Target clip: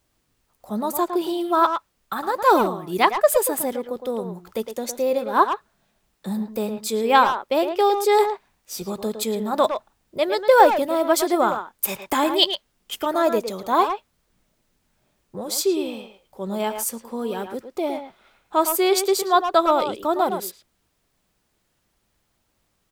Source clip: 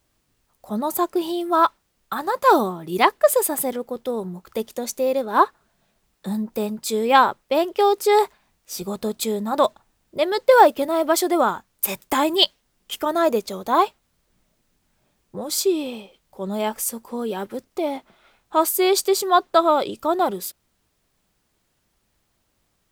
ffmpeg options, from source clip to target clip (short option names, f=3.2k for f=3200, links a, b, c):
-filter_complex "[0:a]asplit=2[a][b];[b]adelay=110,highpass=300,lowpass=3.4k,asoftclip=type=hard:threshold=-10dB,volume=-7dB[c];[a][c]amix=inputs=2:normalize=0,volume=-1dB"